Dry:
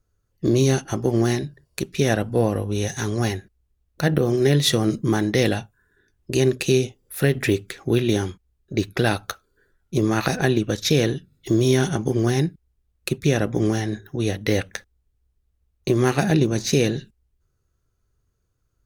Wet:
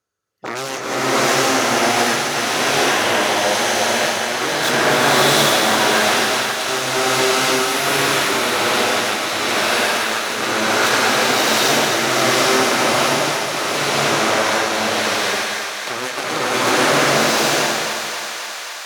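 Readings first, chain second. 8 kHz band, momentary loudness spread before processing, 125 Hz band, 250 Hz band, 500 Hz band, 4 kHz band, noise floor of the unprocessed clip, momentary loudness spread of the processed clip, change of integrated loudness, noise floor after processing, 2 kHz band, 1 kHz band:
+12.5 dB, 11 LU, -9.5 dB, -1.5 dB, +4.0 dB, +13.0 dB, -71 dBFS, 8 LU, +6.0 dB, -27 dBFS, +14.0 dB, +16.0 dB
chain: limiter -10.5 dBFS, peak gain reduction 5.5 dB; added harmonics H 7 -8 dB, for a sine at -10.5 dBFS; weighting filter A; on a send: thinning echo 0.266 s, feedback 82%, high-pass 420 Hz, level -8.5 dB; on the sum: bloom reverb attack 0.79 s, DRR -11.5 dB; gain -3.5 dB

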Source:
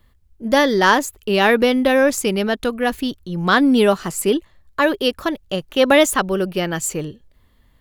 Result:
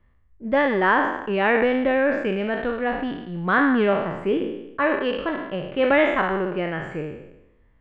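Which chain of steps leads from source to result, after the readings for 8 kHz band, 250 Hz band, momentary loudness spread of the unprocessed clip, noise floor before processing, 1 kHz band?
under -35 dB, -5.0 dB, 11 LU, -56 dBFS, -3.5 dB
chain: spectral trails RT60 0.91 s; Chebyshev low-pass 2300 Hz, order 3; gain -6 dB

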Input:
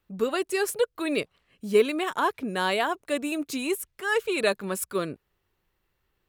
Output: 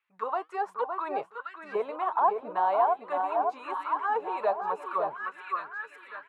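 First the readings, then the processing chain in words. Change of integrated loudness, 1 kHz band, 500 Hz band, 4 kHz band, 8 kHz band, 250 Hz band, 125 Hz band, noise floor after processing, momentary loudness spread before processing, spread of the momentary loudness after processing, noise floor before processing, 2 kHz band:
-2.5 dB, +6.0 dB, -5.0 dB, under -15 dB, under -30 dB, -16.0 dB, under -15 dB, -59 dBFS, 7 LU, 10 LU, -76 dBFS, -8.0 dB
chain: echo 0.563 s -13 dB; flange 1.3 Hz, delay 2.2 ms, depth 5.2 ms, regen +76%; graphic EQ 125/250/1000/4000/8000 Hz +7/-4/+11/+3/+4 dB; echo with dull and thin repeats by turns 0.56 s, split 1600 Hz, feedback 67%, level -6 dB; auto-wah 730–2300 Hz, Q 3.8, down, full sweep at -23 dBFS; in parallel at +2 dB: limiter -26.5 dBFS, peak gain reduction 10.5 dB; on the sum: high shelf 4400 Hz -9.5 dB

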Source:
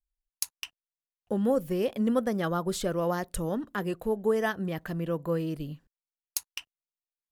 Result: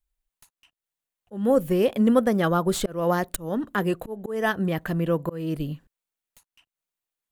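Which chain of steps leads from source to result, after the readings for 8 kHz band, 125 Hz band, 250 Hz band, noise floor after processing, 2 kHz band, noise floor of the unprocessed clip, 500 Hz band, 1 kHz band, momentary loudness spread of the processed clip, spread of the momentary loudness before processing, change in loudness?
-0.5 dB, +5.5 dB, +5.5 dB, under -85 dBFS, +6.0 dB, under -85 dBFS, +4.5 dB, +6.0 dB, 11 LU, 11 LU, +5.5 dB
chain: tracing distortion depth 0.1 ms; bell 5200 Hz -5 dB 0.53 oct; auto swell 0.256 s; gain +7 dB

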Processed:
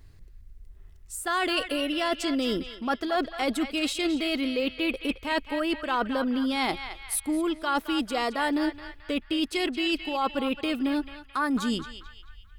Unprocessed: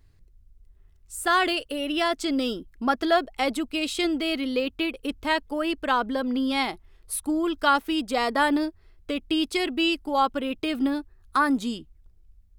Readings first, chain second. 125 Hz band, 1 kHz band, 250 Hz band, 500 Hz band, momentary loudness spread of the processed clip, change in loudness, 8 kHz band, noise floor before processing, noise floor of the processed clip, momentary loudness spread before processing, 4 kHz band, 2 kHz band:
n/a, -4.5 dB, -1.5 dB, -2.5 dB, 5 LU, -2.5 dB, +0.5 dB, -57 dBFS, -50 dBFS, 8 LU, -1.5 dB, -2.5 dB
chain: reverse; compressor 6:1, threshold -31 dBFS, peak gain reduction 15 dB; reverse; narrowing echo 0.218 s, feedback 52%, band-pass 2100 Hz, level -7.5 dB; gain +6.5 dB

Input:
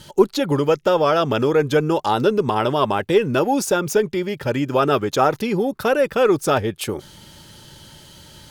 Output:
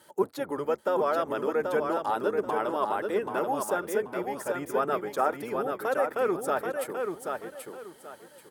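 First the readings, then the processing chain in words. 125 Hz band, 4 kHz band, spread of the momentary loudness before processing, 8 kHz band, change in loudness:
-21.0 dB, -18.0 dB, 6 LU, -11.5 dB, -10.0 dB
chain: octaver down 1 oct, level 0 dB; HPF 410 Hz 12 dB/oct; band shelf 4100 Hz -10.5 dB; on a send: feedback echo 0.783 s, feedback 26%, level -5 dB; on the sum: gain -8.5 dB

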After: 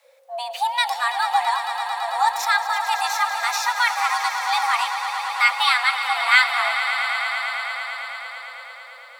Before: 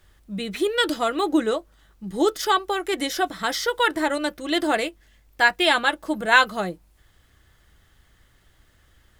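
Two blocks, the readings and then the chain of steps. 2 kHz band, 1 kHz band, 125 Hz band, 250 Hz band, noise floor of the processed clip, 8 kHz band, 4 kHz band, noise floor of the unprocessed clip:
+3.5 dB, +5.0 dB, under -40 dB, under -40 dB, -42 dBFS, +3.5 dB, +2.5 dB, -60 dBFS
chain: swelling echo 0.111 s, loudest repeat 5, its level -12 dB; frequency shift +490 Hz

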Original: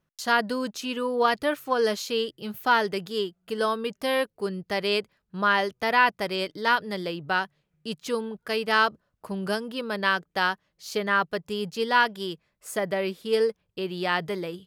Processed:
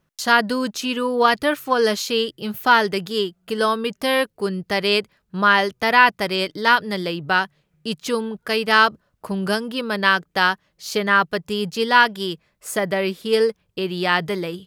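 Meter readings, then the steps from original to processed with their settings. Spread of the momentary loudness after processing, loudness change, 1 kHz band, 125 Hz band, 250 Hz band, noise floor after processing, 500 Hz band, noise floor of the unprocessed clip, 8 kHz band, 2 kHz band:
11 LU, +6.5 dB, +6.5 dB, +7.0 dB, +7.0 dB, -70 dBFS, +5.0 dB, -77 dBFS, +7.5 dB, +7.0 dB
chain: dynamic EQ 560 Hz, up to -3 dB, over -37 dBFS, Q 1; gain +7.5 dB

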